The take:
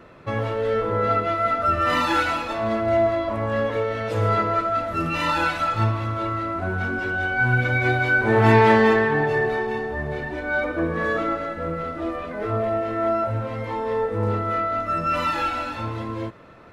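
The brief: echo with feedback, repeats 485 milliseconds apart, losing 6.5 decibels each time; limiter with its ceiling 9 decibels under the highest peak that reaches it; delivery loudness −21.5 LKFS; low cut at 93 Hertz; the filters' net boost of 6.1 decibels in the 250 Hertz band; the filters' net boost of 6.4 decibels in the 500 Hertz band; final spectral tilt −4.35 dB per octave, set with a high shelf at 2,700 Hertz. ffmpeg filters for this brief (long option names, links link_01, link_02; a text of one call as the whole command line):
ffmpeg -i in.wav -af "highpass=93,equalizer=frequency=250:width_type=o:gain=6,equalizer=frequency=500:width_type=o:gain=6,highshelf=frequency=2700:gain=7.5,alimiter=limit=-7dB:level=0:latency=1,aecho=1:1:485|970|1455|1940|2425|2910:0.473|0.222|0.105|0.0491|0.0231|0.0109,volume=-3.5dB" out.wav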